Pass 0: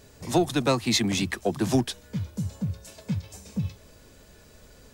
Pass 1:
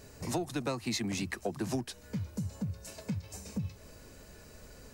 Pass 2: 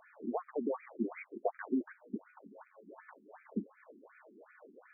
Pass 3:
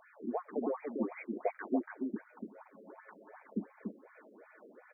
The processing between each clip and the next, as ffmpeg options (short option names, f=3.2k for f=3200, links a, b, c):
-af "equalizer=f=3.4k:t=o:w=0.21:g=-8.5,acompressor=threshold=-34dB:ratio=3"
-af "aeval=exprs='(tanh(22.4*val(0)+0.65)-tanh(0.65))/22.4':c=same,afftfilt=real='re*between(b*sr/1024,270*pow(1800/270,0.5+0.5*sin(2*PI*2.7*pts/sr))/1.41,270*pow(1800/270,0.5+0.5*sin(2*PI*2.7*pts/sr))*1.41)':imag='im*between(b*sr/1024,270*pow(1800/270,0.5+0.5*sin(2*PI*2.7*pts/sr))/1.41,270*pow(1800/270,0.5+0.5*sin(2*PI*2.7*pts/sr))*1.41)':win_size=1024:overlap=0.75,volume=8dB"
-af "aecho=1:1:288:0.562"